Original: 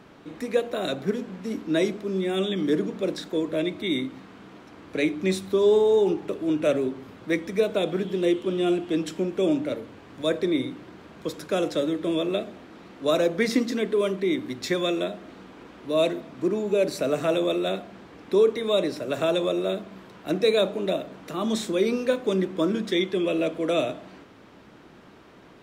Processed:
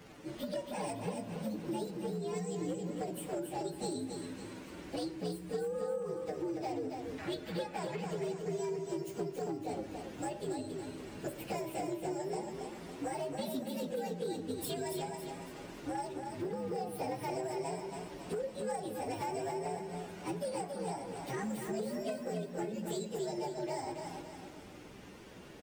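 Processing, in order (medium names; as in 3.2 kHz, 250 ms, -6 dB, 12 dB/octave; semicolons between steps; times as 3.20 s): frequency axis rescaled in octaves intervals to 130%; 7.18–8.21 s: peaking EQ 1.7 kHz +12 dB 1.6 oct; compression 12:1, threshold -36 dBFS, peak gain reduction 20 dB; hard clipper -32.5 dBFS, distortion -22 dB; on a send: feedback delay 279 ms, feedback 42%, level -5.5 dB; on the sum: trim +1 dB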